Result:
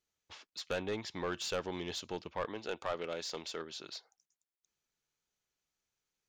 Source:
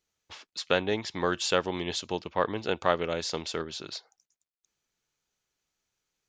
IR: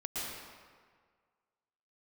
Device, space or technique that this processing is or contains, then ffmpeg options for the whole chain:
saturation between pre-emphasis and de-emphasis: -filter_complex "[0:a]asettb=1/sr,asplit=3[s0][s1][s2];[s0]atrim=end=2.454[s3];[s1]atrim=start=2.45:end=3.97,asetpts=PTS-STARTPTS,afade=t=in:d=0.004:c=qsin,afade=t=out:st=1.516:d=0.004:c=qsin,highpass=f=280:p=1[s4];[s2]atrim=start=3.966[s5];[s3][s4]acrossfade=d=0.004:c1=hsin:c2=qsin[s6];[s6][s5]acrossfade=d=0.004:c1=qsin:c2=hsin,highshelf=f=4100:g=8.5,asoftclip=type=tanh:threshold=0.0841,highshelf=f=4100:g=-8.5,volume=0.501"

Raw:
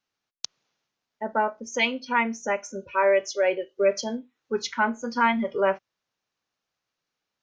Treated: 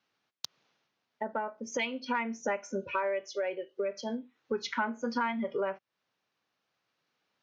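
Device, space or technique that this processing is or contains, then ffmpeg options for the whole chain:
AM radio: -af "highpass=110,lowpass=4400,acompressor=threshold=0.0178:ratio=6,asoftclip=type=tanh:threshold=0.112,tremolo=f=0.4:d=0.27,volume=2"

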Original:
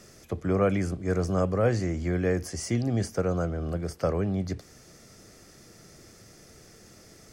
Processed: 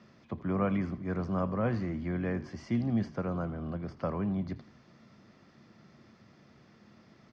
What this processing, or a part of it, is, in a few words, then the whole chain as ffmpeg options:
frequency-shifting delay pedal into a guitar cabinet: -filter_complex "[0:a]asplit=5[s0][s1][s2][s3][s4];[s1]adelay=81,afreqshift=-40,volume=0.15[s5];[s2]adelay=162,afreqshift=-80,volume=0.075[s6];[s3]adelay=243,afreqshift=-120,volume=0.0376[s7];[s4]adelay=324,afreqshift=-160,volume=0.0186[s8];[s0][s5][s6][s7][s8]amix=inputs=5:normalize=0,highpass=90,equalizer=f=140:t=q:w=4:g=4,equalizer=f=220:t=q:w=4:g=9,equalizer=f=450:t=q:w=4:g=-6,equalizer=f=1000:t=q:w=4:g=9,lowpass=f=4000:w=0.5412,lowpass=f=4000:w=1.3066,volume=0.473"

